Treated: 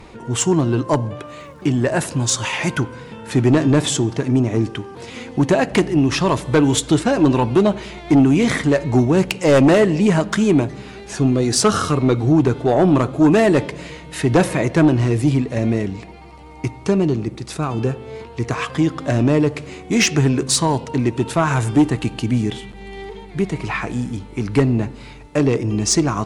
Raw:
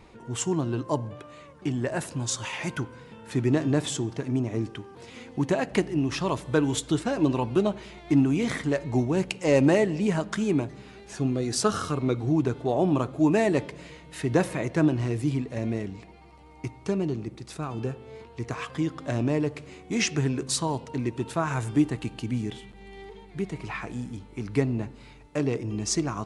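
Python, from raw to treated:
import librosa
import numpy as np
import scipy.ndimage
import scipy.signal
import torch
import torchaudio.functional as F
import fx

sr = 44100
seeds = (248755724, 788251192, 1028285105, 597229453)

y = fx.dmg_crackle(x, sr, seeds[0], per_s=170.0, level_db=-57.0, at=(1.26, 2.3), fade=0.02)
y = fx.fold_sine(y, sr, drive_db=7, ceiling_db=-7.5)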